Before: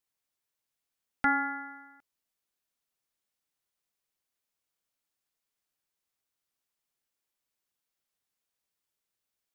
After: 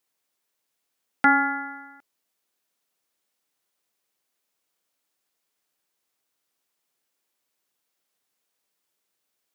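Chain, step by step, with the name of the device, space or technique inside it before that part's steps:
filter by subtraction (in parallel: low-pass filter 340 Hz 12 dB per octave + polarity inversion)
on the sum: level +7.5 dB

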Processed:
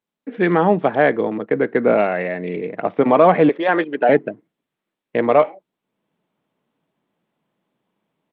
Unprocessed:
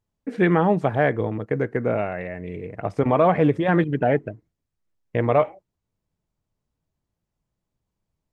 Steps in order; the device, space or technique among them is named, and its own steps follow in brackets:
0:03.49–0:04.09: high-pass filter 420 Hz 12 dB per octave
Bluetooth headset (high-pass filter 190 Hz 24 dB per octave; automatic gain control gain up to 14 dB; downsampling to 8,000 Hz; level −1 dB; SBC 64 kbit/s 32,000 Hz)

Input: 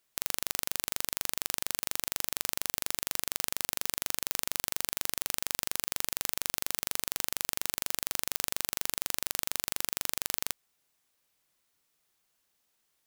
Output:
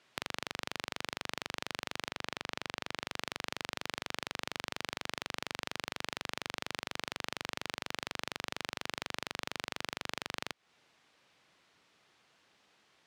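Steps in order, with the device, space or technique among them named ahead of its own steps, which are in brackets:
AM radio (band-pass filter 100–3,600 Hz; downward compressor 6 to 1, threshold −45 dBFS, peak gain reduction 12 dB; soft clipping −27.5 dBFS, distortion −18 dB)
0:02.09–0:03.05: high-shelf EQ 8,300 Hz −8 dB
level +14 dB

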